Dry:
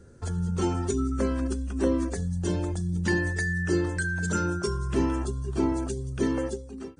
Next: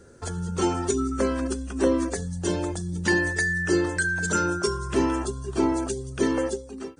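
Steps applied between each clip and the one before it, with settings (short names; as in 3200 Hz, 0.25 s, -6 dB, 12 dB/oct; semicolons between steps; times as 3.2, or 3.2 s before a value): tone controls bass -9 dB, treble +1 dB; gain +5.5 dB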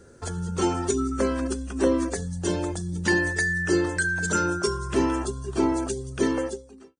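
ending faded out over 0.72 s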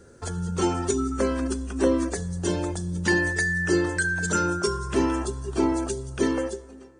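plate-style reverb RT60 3.1 s, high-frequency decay 0.55×, DRR 19 dB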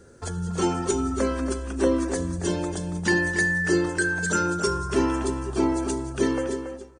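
outdoor echo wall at 48 m, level -8 dB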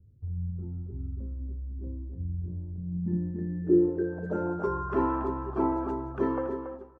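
low-pass sweep 110 Hz -> 1100 Hz, 2.66–4.85; gain -5.5 dB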